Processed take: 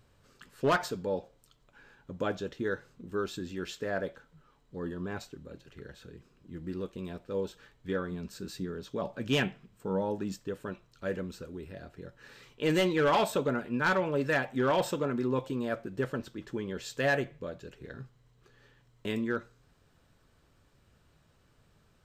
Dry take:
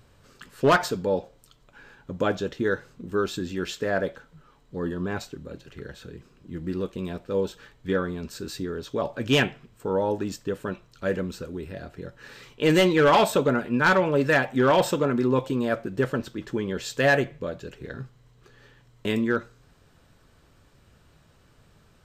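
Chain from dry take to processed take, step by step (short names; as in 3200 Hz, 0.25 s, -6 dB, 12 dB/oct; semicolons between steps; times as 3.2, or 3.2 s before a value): 8.11–10.39 bell 190 Hz +8 dB 0.33 oct; gain -7.5 dB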